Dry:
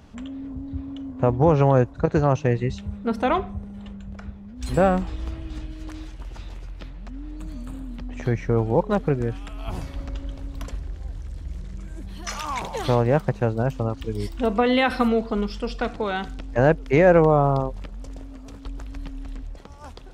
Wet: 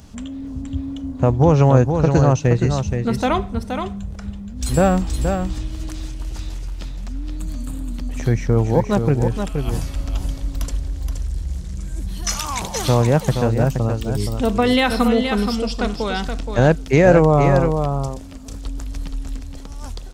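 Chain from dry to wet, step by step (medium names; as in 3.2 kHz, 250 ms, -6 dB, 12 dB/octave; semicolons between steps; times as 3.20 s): tone controls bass +5 dB, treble +13 dB; delay 473 ms -6.5 dB; trim +1.5 dB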